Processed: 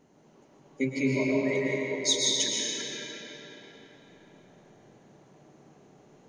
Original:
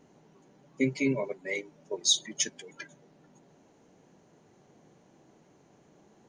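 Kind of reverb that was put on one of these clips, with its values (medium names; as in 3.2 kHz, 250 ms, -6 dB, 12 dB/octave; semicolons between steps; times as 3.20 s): algorithmic reverb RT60 4 s, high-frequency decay 0.7×, pre-delay 85 ms, DRR -5 dB; trim -2 dB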